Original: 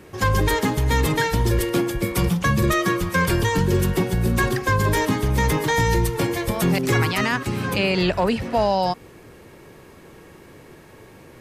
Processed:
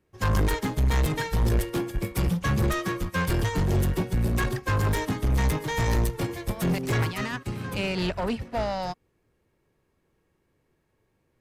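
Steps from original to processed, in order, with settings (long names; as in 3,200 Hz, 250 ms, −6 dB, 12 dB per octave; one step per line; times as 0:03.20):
low-shelf EQ 93 Hz +9.5 dB
soft clipping −17.5 dBFS, distortion −10 dB
expander for the loud parts 2.5 to 1, over −37 dBFS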